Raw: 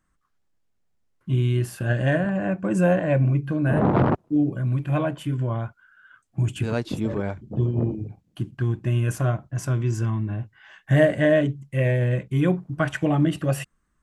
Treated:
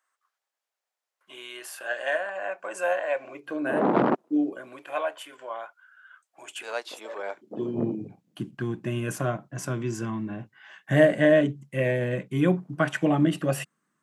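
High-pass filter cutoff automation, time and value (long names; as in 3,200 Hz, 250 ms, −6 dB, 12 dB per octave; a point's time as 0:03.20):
high-pass filter 24 dB per octave
0:03.14 590 Hz
0:04.01 200 Hz
0:05.03 570 Hz
0:07.17 570 Hz
0:07.82 160 Hz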